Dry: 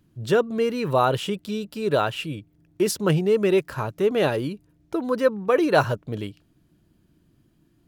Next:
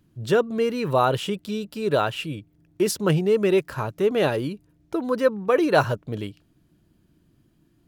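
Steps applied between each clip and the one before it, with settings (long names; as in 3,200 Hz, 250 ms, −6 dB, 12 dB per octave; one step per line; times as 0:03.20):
no processing that can be heard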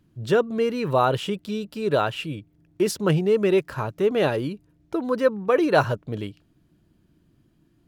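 high-shelf EQ 6,500 Hz −5 dB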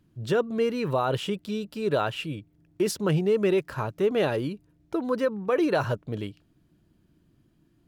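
brickwall limiter −13 dBFS, peak gain reduction 8 dB
level −2 dB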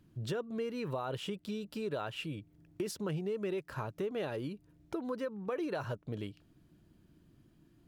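downward compressor 3 to 1, threshold −38 dBFS, peak gain reduction 14 dB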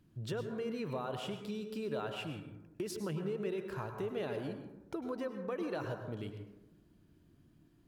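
dense smooth reverb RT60 1 s, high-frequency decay 0.35×, pre-delay 90 ms, DRR 6 dB
level −2.5 dB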